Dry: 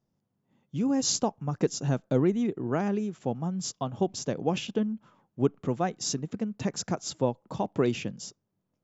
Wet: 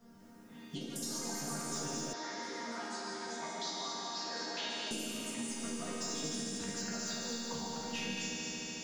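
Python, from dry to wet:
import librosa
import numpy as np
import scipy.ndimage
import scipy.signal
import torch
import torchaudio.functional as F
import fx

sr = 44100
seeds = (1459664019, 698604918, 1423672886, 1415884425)

y = fx.peak_eq(x, sr, hz=1500.0, db=9.5, octaves=0.49)
y = y + 0.92 * np.pad(y, (int(4.3 * sr / 1000.0), 0))[:len(y)]
y = fx.over_compress(y, sr, threshold_db=-31.0, ratio=-1.0)
y = 10.0 ** (-20.5 / 20.0) * np.tanh(y / 10.0 ** (-20.5 / 20.0))
y = fx.resonator_bank(y, sr, root=39, chord='major', decay_s=0.62)
y = fx.echo_heads(y, sr, ms=74, heads='all three', feedback_pct=73, wet_db=-7)
y = fx.echo_pitch(y, sr, ms=192, semitones=5, count=2, db_per_echo=-6.0)
y = fx.cabinet(y, sr, low_hz=480.0, low_slope=12, high_hz=5400.0, hz=(490.0, 940.0, 1900.0, 2700.0, 4000.0), db=(-5, 5, 7, -6, 6), at=(2.13, 4.91))
y = fx.band_squash(y, sr, depth_pct=70)
y = y * librosa.db_to_amplitude(4.5)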